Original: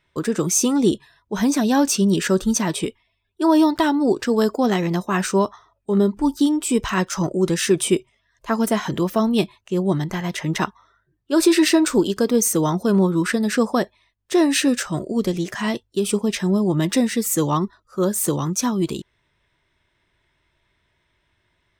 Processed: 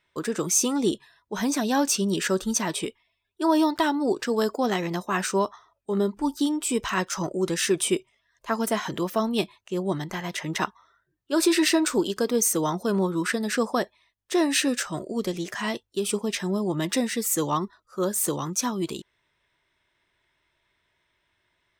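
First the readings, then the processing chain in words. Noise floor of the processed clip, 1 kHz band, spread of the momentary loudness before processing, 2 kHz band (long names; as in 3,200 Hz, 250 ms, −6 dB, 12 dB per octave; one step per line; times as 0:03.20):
−74 dBFS, −3.0 dB, 8 LU, −2.5 dB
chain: low-shelf EQ 260 Hz −9.5 dB
level −2.5 dB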